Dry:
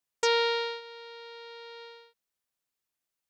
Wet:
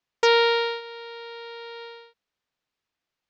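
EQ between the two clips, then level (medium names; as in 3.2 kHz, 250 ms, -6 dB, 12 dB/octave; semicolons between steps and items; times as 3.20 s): distance through air 190 m; treble shelf 3.9 kHz +5.5 dB; +7.5 dB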